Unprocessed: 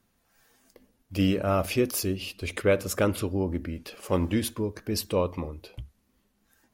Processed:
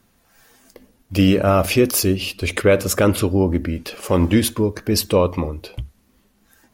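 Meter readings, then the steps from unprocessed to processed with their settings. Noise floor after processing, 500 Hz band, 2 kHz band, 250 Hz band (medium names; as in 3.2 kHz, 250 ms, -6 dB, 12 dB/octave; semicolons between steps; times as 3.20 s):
-61 dBFS, +9.0 dB, +9.5 dB, +10.0 dB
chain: loudness maximiser +14 dB; trim -3.5 dB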